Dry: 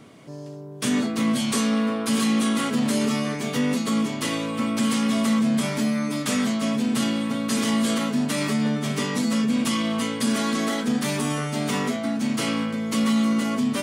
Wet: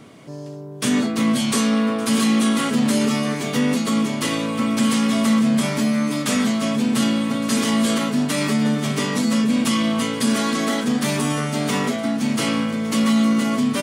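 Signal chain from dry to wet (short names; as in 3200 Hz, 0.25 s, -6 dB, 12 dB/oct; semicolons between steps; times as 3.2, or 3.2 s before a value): feedback echo 1.162 s, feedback 52%, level -17 dB; gain +3.5 dB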